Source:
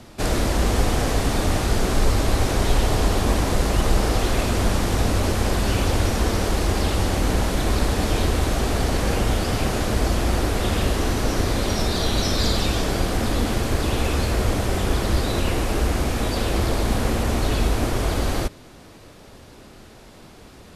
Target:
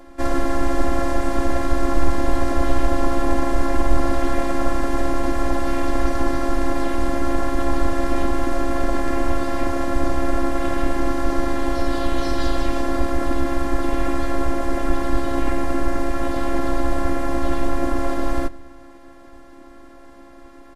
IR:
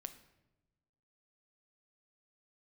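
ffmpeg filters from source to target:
-filter_complex "[0:a]asplit=2[a][b];[1:a]atrim=start_sample=2205[c];[b][c]afir=irnorm=-1:irlink=0,volume=-3dB[d];[a][d]amix=inputs=2:normalize=0,afftfilt=real='hypot(re,im)*cos(PI*b)':imag='0':win_size=512:overlap=0.75,highshelf=f=2.3k:t=q:w=1.5:g=-9,asplit=2[e][f];[f]asetrate=35002,aresample=44100,atempo=1.25992,volume=-1dB[g];[e][g]amix=inputs=2:normalize=0,volume=-1dB"

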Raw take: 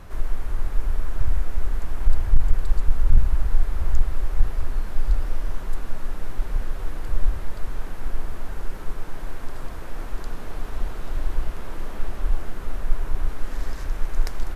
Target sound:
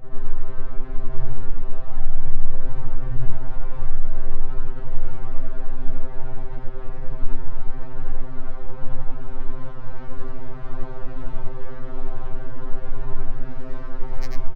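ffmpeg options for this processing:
-af "afftfilt=real='re':imag='-im':win_size=8192:overlap=0.75,aresample=16000,aresample=44100,adynamicsmooth=sensitivity=7.5:basefreq=710,alimiter=level_in=13.5dB:limit=-1dB:release=50:level=0:latency=1,afftfilt=real='re*2.45*eq(mod(b,6),0)':imag='im*2.45*eq(mod(b,6),0)':win_size=2048:overlap=0.75,volume=-4.5dB"

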